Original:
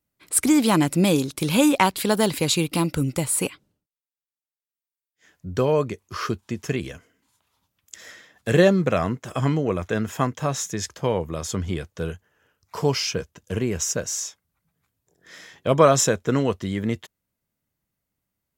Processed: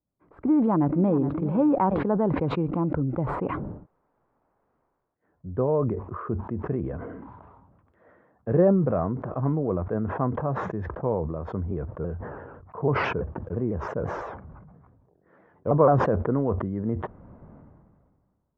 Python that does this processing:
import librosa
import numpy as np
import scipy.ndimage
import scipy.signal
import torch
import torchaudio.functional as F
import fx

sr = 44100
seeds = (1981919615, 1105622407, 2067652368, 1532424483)

y = fx.echo_throw(x, sr, start_s=0.5, length_s=0.77, ms=420, feedback_pct=25, wet_db=-14.5)
y = fx.vibrato_shape(y, sr, shape='saw_down', rate_hz=6.0, depth_cents=160.0, at=(11.71, 16.15))
y = scipy.signal.sosfilt(scipy.signal.butter(4, 1100.0, 'lowpass', fs=sr, output='sos'), y)
y = fx.sustainer(y, sr, db_per_s=33.0)
y = y * librosa.db_to_amplitude(-3.5)